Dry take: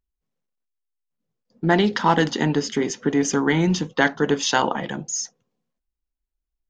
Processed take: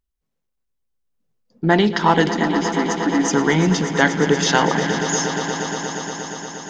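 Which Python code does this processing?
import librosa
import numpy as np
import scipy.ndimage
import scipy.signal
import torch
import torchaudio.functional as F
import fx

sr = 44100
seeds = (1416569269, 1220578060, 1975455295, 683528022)

y = fx.fixed_phaser(x, sr, hz=660.0, stages=8, at=(2.31, 3.28))
y = fx.echo_swell(y, sr, ms=118, loudest=5, wet_db=-12.5)
y = y * librosa.db_to_amplitude(2.5)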